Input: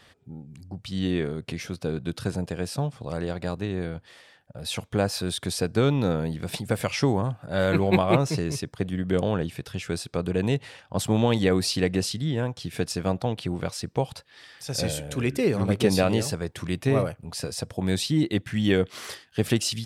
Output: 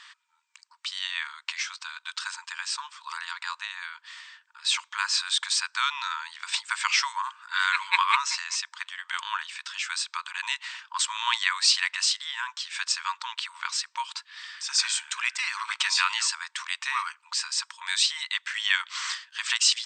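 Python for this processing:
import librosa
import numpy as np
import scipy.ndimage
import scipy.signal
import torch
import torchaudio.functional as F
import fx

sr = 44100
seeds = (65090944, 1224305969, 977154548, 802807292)

y = fx.brickwall_bandpass(x, sr, low_hz=900.0, high_hz=8600.0)
y = F.gain(torch.from_numpy(y), 7.5).numpy()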